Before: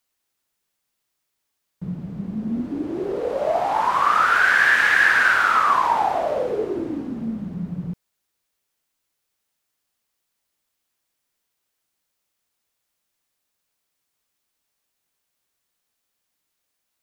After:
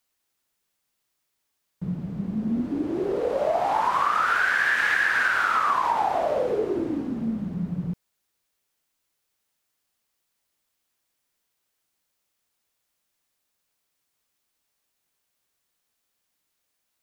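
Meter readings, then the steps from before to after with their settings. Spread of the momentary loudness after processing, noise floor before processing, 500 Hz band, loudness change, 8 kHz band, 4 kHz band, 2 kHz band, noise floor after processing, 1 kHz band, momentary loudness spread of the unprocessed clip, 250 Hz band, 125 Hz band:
11 LU, −78 dBFS, −1.5 dB, −5.0 dB, −5.0 dB, −5.0 dB, −5.5 dB, −78 dBFS, −4.0 dB, 17 LU, 0.0 dB, 0.0 dB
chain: downward compressor, threshold −19 dBFS, peak gain reduction 7 dB

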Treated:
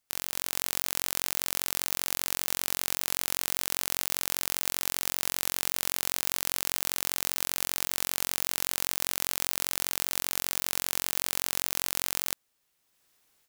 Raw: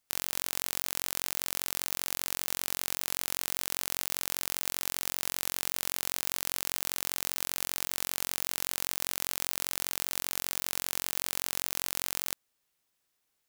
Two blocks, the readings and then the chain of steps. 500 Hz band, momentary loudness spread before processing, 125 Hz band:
+3.0 dB, 0 LU, +3.0 dB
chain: automatic gain control
level −1 dB

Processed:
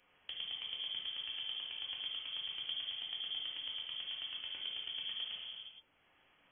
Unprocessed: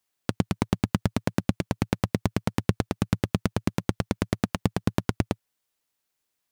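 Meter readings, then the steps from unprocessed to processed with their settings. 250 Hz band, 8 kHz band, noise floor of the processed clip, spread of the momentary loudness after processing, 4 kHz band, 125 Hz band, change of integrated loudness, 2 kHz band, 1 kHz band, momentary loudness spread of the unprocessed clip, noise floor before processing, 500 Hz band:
below −40 dB, below −40 dB, −72 dBFS, 5 LU, +6.0 dB, below −40 dB, −11.0 dB, −12.0 dB, −25.5 dB, 3 LU, −80 dBFS, −34.0 dB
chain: volume swells 122 ms
tape wow and flutter 23 cents
reverb whose tail is shaped and stops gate 490 ms falling, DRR −5 dB
voice inversion scrambler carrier 3,300 Hz
multiband upward and downward compressor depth 40%
level +2.5 dB

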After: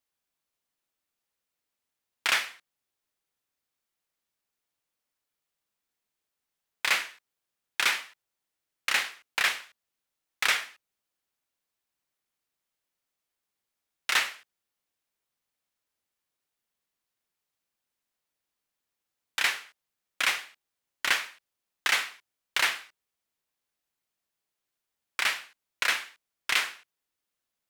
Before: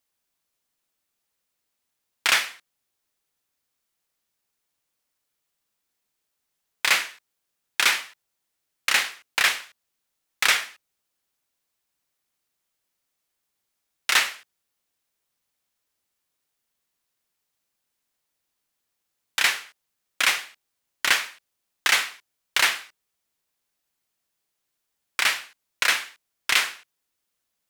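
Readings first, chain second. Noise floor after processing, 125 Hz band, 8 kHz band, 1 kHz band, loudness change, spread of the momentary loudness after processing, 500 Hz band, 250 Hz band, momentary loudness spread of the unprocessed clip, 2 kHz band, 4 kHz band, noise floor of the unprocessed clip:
below −85 dBFS, can't be measured, −7.0 dB, −4.5 dB, −5.0 dB, 12 LU, −4.5 dB, −5.0 dB, 12 LU, −4.5 dB, −5.5 dB, −80 dBFS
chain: bass and treble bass −1 dB, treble −3 dB
level −4.5 dB

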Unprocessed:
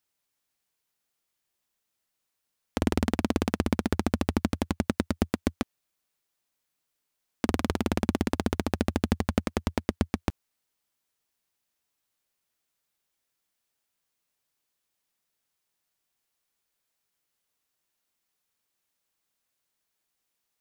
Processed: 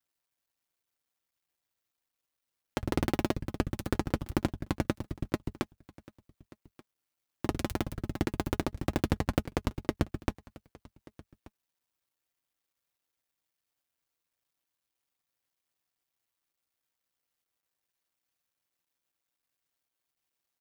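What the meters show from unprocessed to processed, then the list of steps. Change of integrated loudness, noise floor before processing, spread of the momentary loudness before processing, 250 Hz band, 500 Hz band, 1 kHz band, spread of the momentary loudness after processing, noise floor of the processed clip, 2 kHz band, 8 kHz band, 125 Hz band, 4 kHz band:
−4.5 dB, −81 dBFS, 5 LU, −5.5 dB, −3.5 dB, −3.5 dB, 7 LU, below −85 dBFS, −4.0 dB, −5.0 dB, −2.5 dB, −4.5 dB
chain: sub-harmonics by changed cycles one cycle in 2, muted
parametric band 8,100 Hz −2.5 dB 1.7 octaves
notch comb filter 210 Hz
on a send: single-tap delay 1,182 ms −22.5 dB

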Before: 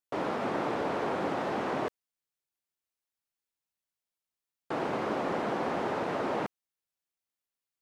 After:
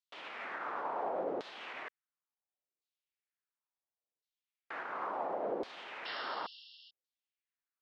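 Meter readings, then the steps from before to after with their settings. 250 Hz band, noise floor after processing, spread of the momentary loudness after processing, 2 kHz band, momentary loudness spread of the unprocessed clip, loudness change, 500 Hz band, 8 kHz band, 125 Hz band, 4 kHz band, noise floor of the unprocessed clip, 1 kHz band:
−15.0 dB, below −85 dBFS, 10 LU, −5.0 dB, 4 LU, −7.5 dB, −8.5 dB, below −15 dB, −22.0 dB, −2.0 dB, below −85 dBFS, −6.5 dB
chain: brickwall limiter −25 dBFS, peak gain reduction 6 dB
sound drawn into the spectrogram noise, 0:06.05–0:06.91, 2,700–5,500 Hz −37 dBFS
auto-filter band-pass saw down 0.71 Hz 420–4,200 Hz
level +2.5 dB

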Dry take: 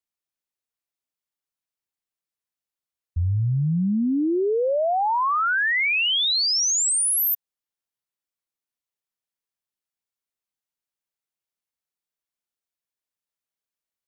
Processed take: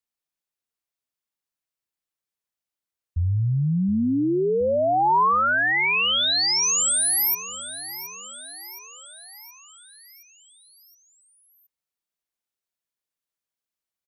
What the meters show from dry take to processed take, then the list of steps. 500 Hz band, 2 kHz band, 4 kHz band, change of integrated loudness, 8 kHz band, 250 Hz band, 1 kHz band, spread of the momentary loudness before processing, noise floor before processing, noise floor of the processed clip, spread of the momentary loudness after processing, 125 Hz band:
+0.5 dB, +0.5 dB, 0.0 dB, 0.0 dB, 0.0 dB, 0.0 dB, +3.0 dB, 5 LU, below −85 dBFS, below −85 dBFS, 18 LU, 0.0 dB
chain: dynamic equaliser 980 Hz, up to +4 dB, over −33 dBFS, Q 2.3
repeating echo 720 ms, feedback 57%, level −14.5 dB

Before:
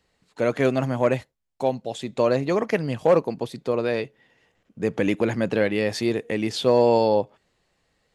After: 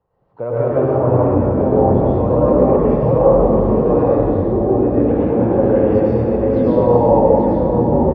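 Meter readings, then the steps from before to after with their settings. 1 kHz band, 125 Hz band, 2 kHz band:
+9.5 dB, +13.5 dB, can't be measured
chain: octave-band graphic EQ 125/250/500/1,000/2,000/4,000/8,000 Hz +9/−5/+6/+11/−12/−11/−5 dB
downward compressor 1.5 to 1, threshold −20 dBFS, peak gain reduction 5.5 dB
delay with pitch and tempo change per echo 135 ms, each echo −6 semitones, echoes 3
high-frequency loss of the air 350 metres
on a send: single-tap delay 836 ms −6.5 dB
on the sum: dense smooth reverb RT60 2.2 s, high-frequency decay 0.6×, pre-delay 90 ms, DRR −8.5 dB
level −4.5 dB

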